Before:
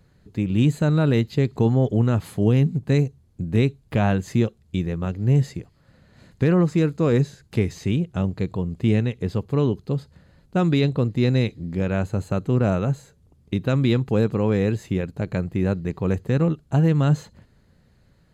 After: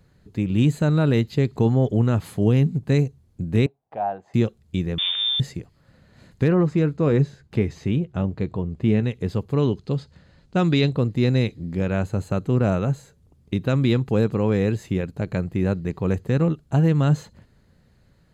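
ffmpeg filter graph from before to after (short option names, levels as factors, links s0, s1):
-filter_complex "[0:a]asettb=1/sr,asplit=3[s0][s1][s2];[s0]atrim=end=3.664[s3];[s1]atrim=start=3.66:end=4.34,asetpts=PTS-STARTPTS,afade=t=in:d=0.004:c=qsin,afade=t=out:st=0.676:d=0.004:c=qsin,acontrast=53,bandpass=f=760:t=q:w=5.9[s4];[s2]atrim=start=4.336[s5];[s3][s4]acrossfade=d=0.004:c1=hsin:c2=qsin[s6];[s6][s5]acrossfade=d=0.004:c1=qsin:c2=hsin,asettb=1/sr,asplit=3[s7][s8][s9];[s7]atrim=end=4.984[s10];[s8]atrim=start=4.98:end=5.4,asetpts=PTS-STARTPTS,afade=t=in:d=0.004:c=qsin,afade=t=out:st=0.416:d=0.004:c=qsin,aeval=exprs='val(0)+0.5*0.0596*sgn(val(0))':c=same,acompressor=threshold=0.1:ratio=12:attack=3.2:release=140:knee=1:detection=peak,lowpass=f=3100:t=q:w=0.5098,lowpass=f=3100:t=q:w=0.6013,lowpass=f=3100:t=q:w=0.9,lowpass=f=3100:t=q:w=2.563,afreqshift=-3700[s11];[s9]atrim=start=5.396[s12];[s10][s11]acrossfade=d=0.004:c1=hsin:c2=qsin[s13];[s13][s12]acrossfade=d=0.004:c1=qsin:c2=hsin,asettb=1/sr,asplit=3[s14][s15][s16];[s14]atrim=end=6.484[s17];[s15]atrim=start=6.48:end=9.03,asetpts=PTS-STARTPTS,afade=t=in:d=0.004:c=qsin,afade=t=out:st=2.546:d=0.004:c=qsin,lowpass=f=2600:p=1,asplit=2[s18][s19];[s19]adelay=14,volume=0.211[s20];[s18][s20]amix=inputs=2:normalize=0,atrim=end_sample=112455[s21];[s16]atrim=start=9.026[s22];[s17][s21]acrossfade=d=0.004:c1=hsin:c2=qsin[s23];[s23][s22]acrossfade=d=0.004:c1=qsin:c2=hsin,asettb=1/sr,asplit=3[s24][s25][s26];[s24]atrim=end=9.624[s27];[s25]atrim=start=9.62:end=10.92,asetpts=PTS-STARTPTS,afade=t=in:d=0.004:c=qsin,afade=t=out:st=1.296:d=0.004:c=qsin,lowpass=5800,highshelf=f=2800:g=7.5[s28];[s26]atrim=start=10.916[s29];[s27][s28]acrossfade=d=0.004:c1=hsin:c2=qsin[s30];[s30][s29]acrossfade=d=0.004:c1=qsin:c2=hsin"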